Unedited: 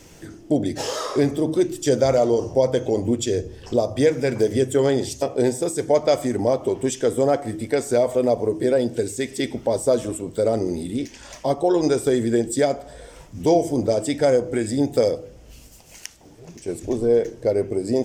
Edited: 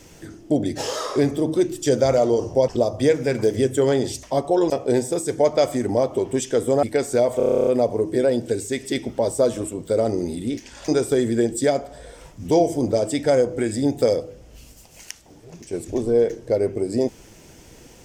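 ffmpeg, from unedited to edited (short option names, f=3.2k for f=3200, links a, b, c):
-filter_complex "[0:a]asplit=16[a][b][c][d][e][f][g][h][i][j][k][l][m][n][o][p];[a]atrim=end=2.682[q];[b]atrim=start=3.648:end=5.202[r];[c]atrim=start=11.358:end=11.832[s];[d]atrim=start=5.198:end=7.332[t];[e]atrim=start=7.608:end=8.182[u];[f]atrim=start=8.148:end=8.182[v];[g]atrim=start=8.148:end=8.182[w];[h]atrim=start=8.148:end=8.182[x];[i]atrim=start=8.148:end=8.182[y];[j]atrim=start=8.148:end=8.182[z];[k]atrim=start=8.148:end=8.182[aa];[l]atrim=start=8.148:end=8.182[ab];[m]atrim=start=8.148:end=8.182[ac];[n]atrim=start=8.148:end=8.182[ad];[o]atrim=start=8.148:end=11.362[ae];[p]atrim=start=11.828[af];[q][r]acrossfade=d=0.004:c1=hsin:c2=hsin[ag];[ag][s]acrossfade=d=0.004:c1=hsin:c2=hsin[ah];[ah][t]acrossfade=d=0.004:c1=hsin:c2=hsin[ai];[ai][u]acrossfade=d=0.004:c1=hsin:c2=hsin[aj];[aj][v]acrossfade=d=0.004:c1=hsin:c2=hsin[ak];[ak][w]acrossfade=d=0.004:c1=hsin:c2=hsin[al];[al][x]acrossfade=d=0.004:c1=hsin:c2=hsin[am];[am][y]acrossfade=d=0.004:c1=hsin:c2=hsin[an];[an][z]acrossfade=d=0.004:c1=hsin:c2=hsin[ao];[ao][aa]acrossfade=d=0.004:c1=hsin:c2=hsin[ap];[ap][ab]acrossfade=d=0.004:c1=hsin:c2=hsin[aq];[aq][ac]acrossfade=d=0.004:c1=hsin:c2=hsin[ar];[ar][ad]acrossfade=d=0.004:c1=hsin:c2=hsin[as];[as][ae]acrossfade=d=0.004:c1=hsin:c2=hsin[at];[at][af]acrossfade=d=0.004:c1=hsin:c2=hsin"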